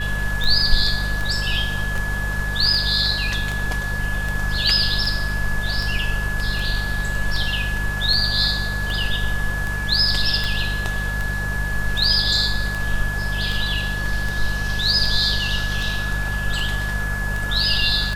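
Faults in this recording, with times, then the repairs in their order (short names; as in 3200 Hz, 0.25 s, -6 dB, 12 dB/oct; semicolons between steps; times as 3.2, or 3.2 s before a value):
hum 50 Hz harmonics 4 -26 dBFS
tick 78 rpm
tone 1700 Hz -26 dBFS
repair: de-click; de-hum 50 Hz, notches 4; notch 1700 Hz, Q 30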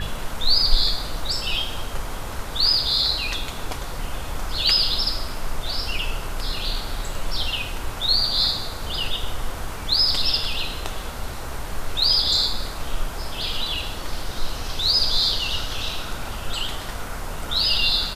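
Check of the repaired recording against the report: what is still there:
none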